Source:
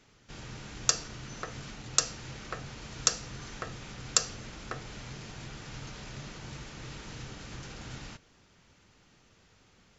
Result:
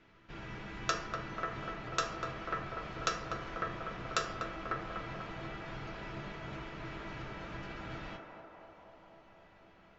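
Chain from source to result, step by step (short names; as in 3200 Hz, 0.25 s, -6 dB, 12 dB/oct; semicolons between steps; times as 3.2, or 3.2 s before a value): Chebyshev low-pass 2300 Hz, order 2; resonator 330 Hz, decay 0.18 s, harmonics all, mix 80%; narrowing echo 0.245 s, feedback 80%, band-pass 680 Hz, level -4 dB; on a send at -3.5 dB: reverb RT60 0.60 s, pre-delay 3 ms; on the sum: gain +10.5 dB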